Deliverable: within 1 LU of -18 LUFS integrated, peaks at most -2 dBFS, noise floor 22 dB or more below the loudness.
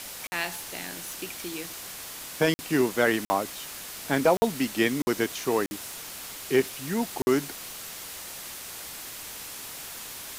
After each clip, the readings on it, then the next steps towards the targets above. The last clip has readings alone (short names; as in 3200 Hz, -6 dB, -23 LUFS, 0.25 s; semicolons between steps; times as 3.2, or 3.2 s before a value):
dropouts 7; longest dropout 50 ms; noise floor -40 dBFS; noise floor target -51 dBFS; loudness -29.0 LUFS; peak -10.5 dBFS; loudness target -18.0 LUFS
-> interpolate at 0.27/2.54/3.25/4.37/5.02/5.66/7.22, 50 ms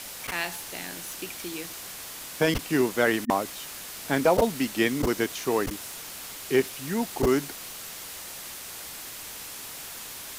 dropouts 0; noise floor -40 dBFS; noise floor target -51 dBFS
-> noise print and reduce 11 dB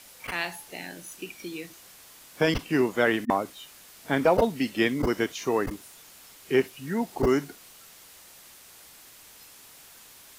noise floor -51 dBFS; loudness -27.0 LUFS; peak -7.5 dBFS; loudness target -18.0 LUFS
-> gain +9 dB; limiter -2 dBFS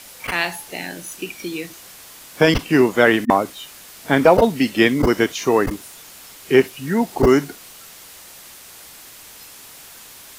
loudness -18.0 LUFS; peak -2.0 dBFS; noise floor -42 dBFS